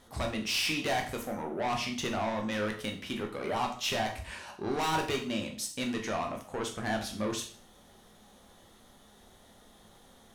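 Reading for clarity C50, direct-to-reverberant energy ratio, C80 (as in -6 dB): 9.0 dB, 2.0 dB, 13.0 dB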